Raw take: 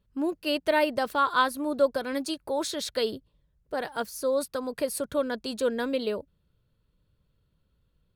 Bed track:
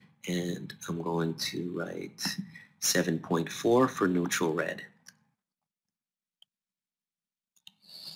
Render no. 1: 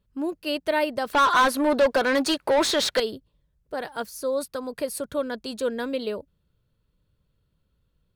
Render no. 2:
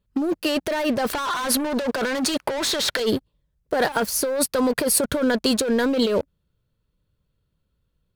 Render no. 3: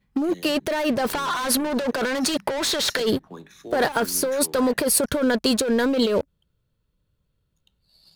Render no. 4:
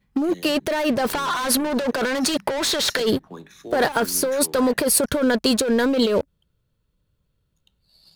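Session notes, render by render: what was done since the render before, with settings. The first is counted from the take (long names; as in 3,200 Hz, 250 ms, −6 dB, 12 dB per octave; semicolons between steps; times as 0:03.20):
0:01.13–0:03.00: mid-hump overdrive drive 24 dB, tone 3,300 Hz, clips at −11.5 dBFS
leveller curve on the samples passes 3; compressor whose output falls as the input rises −22 dBFS, ratio −1
mix in bed track −12 dB
level +1.5 dB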